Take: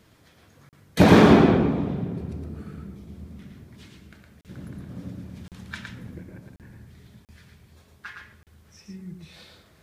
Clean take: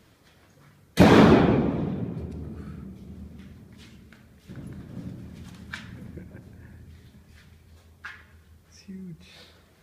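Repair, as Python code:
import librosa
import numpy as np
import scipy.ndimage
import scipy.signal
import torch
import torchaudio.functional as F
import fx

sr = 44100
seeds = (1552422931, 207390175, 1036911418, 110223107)

y = fx.fix_interpolate(x, sr, at_s=(0.69, 4.41, 5.48, 6.56, 7.25, 8.43), length_ms=38.0)
y = fx.fix_echo_inverse(y, sr, delay_ms=113, level_db=-4.5)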